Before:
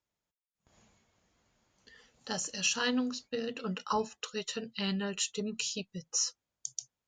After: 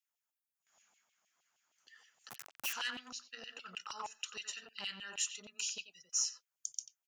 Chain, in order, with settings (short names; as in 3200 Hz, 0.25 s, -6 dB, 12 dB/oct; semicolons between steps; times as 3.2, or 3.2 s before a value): 2.29–2.73 Schmitt trigger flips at -27 dBFS; graphic EQ 125/500/1000/2000/4000/8000 Hz +5/-11/-12/-9/-12/-3 dB; speakerphone echo 90 ms, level -7 dB; LFO high-pass saw down 6.4 Hz 740–3000 Hz; core saturation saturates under 3500 Hz; gain +5 dB